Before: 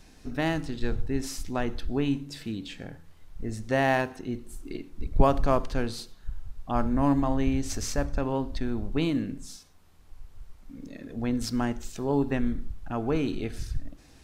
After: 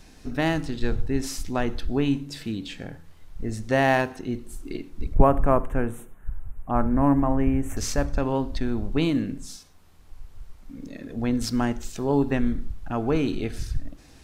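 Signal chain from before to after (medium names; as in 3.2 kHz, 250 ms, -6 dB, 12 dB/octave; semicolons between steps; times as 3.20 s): 5.14–7.77 s: Butterworth band-stop 4.6 kHz, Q 0.63; trim +3.5 dB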